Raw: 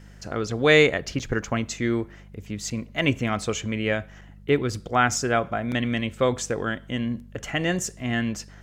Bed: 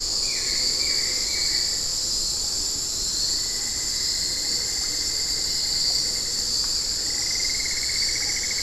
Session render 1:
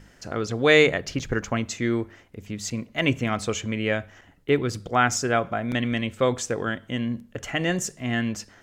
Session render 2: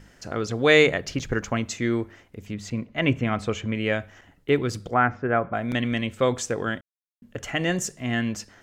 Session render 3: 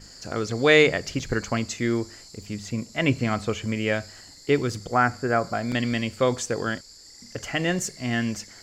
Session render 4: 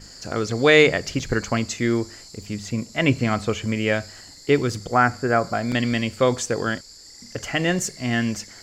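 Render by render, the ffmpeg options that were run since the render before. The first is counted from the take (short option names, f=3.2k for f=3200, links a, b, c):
-af "bandreject=f=50:t=h:w=4,bandreject=f=100:t=h:w=4,bandreject=f=150:t=h:w=4,bandreject=f=200:t=h:w=4"
-filter_complex "[0:a]asettb=1/sr,asplit=3[a][b][c];[a]atrim=end=2.544[d];[b]atrim=start=2.54:end=3.75,asetpts=PTS-STARTPTS,afade=t=in:d=0.004:c=qsin,afade=t=out:st=1.206:d=0.004:c=qsin,bass=f=250:g=2,treble=f=4k:g=-11[e];[c]atrim=start=3.746[f];[d][e]acrossfade=d=0.004:c1=hsin:c2=qsin[g];[g][f]acrossfade=d=0.004:c1=qsin:c2=hsin,asettb=1/sr,asplit=3[h][i][j];[h]atrim=end=4.944[k];[i]atrim=start=4.94:end=5.54,asetpts=PTS-STARTPTS,afade=t=in:d=0.004:c=qsin,afade=t=out:st=0.596:d=0.004:c=qsin,lowpass=f=2k:w=0.5412,lowpass=f=2k:w=1.3066[l];[j]atrim=start=5.536[m];[k][l]acrossfade=d=0.004:c1=hsin:c2=qsin[n];[n][m]acrossfade=d=0.004:c1=qsin:c2=hsin,asplit=3[o][p][q];[o]atrim=end=6.81,asetpts=PTS-STARTPTS,afade=t=out:st=6.806:d=0.004:c=hsin[r];[p]atrim=start=6.81:end=7.22,asetpts=PTS-STARTPTS,volume=0[s];[q]atrim=start=7.22,asetpts=PTS-STARTPTS,afade=t=in:d=0.004:c=hsin[t];[r][s][t]concat=n=3:v=0:a=1"
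-filter_complex "[1:a]volume=-22.5dB[a];[0:a][a]amix=inputs=2:normalize=0"
-af "volume=3dB,alimiter=limit=-3dB:level=0:latency=1"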